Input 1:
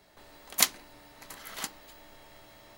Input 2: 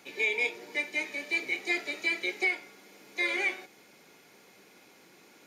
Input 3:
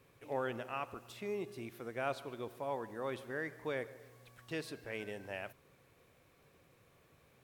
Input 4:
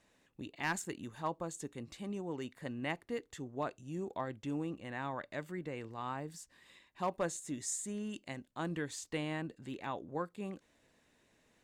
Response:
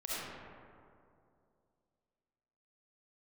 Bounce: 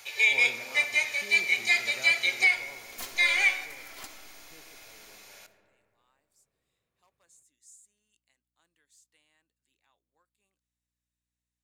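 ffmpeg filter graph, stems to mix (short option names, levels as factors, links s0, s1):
-filter_complex "[0:a]aecho=1:1:2.9:0.57,aeval=exprs='(tanh(25.1*val(0)+0.5)-tanh(0.5))/25.1':c=same,adelay=2400,volume=0.398,asplit=2[s0][s1];[s1]volume=0.376[s2];[1:a]highpass=f=570:w=0.5412,highpass=f=570:w=1.3066,highshelf=f=2200:g=10,volume=1.06,asplit=2[s3][s4];[s4]volume=0.15[s5];[2:a]volume=0.355,afade=t=out:st=2.42:d=0.39:silence=0.281838,asplit=2[s6][s7];[s7]volume=0.335[s8];[3:a]aderivative,aeval=exprs='val(0)+0.0002*(sin(2*PI*60*n/s)+sin(2*PI*2*60*n/s)/2+sin(2*PI*3*60*n/s)/3+sin(2*PI*4*60*n/s)/4+sin(2*PI*5*60*n/s)/5)':c=same,volume=0.158[s9];[4:a]atrim=start_sample=2205[s10];[s2][s5][s8]amix=inputs=3:normalize=0[s11];[s11][s10]afir=irnorm=-1:irlink=0[s12];[s0][s3][s6][s9][s12]amix=inputs=5:normalize=0"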